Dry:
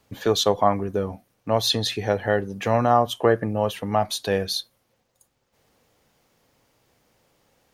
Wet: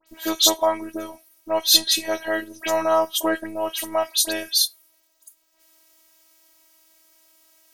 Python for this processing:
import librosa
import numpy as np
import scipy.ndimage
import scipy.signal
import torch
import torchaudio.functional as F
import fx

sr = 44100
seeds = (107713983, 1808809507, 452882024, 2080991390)

y = fx.riaa(x, sr, side='recording')
y = fx.robotise(y, sr, hz=323.0)
y = fx.dispersion(y, sr, late='highs', ms=72.0, hz=2700.0)
y = F.gain(torch.from_numpy(y), 2.5).numpy()